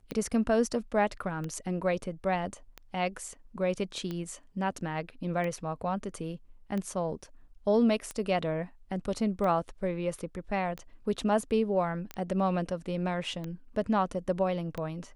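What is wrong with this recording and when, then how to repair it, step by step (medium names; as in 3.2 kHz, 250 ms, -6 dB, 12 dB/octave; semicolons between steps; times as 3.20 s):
tick 45 rpm -23 dBFS
12.14 s: pop -23 dBFS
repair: de-click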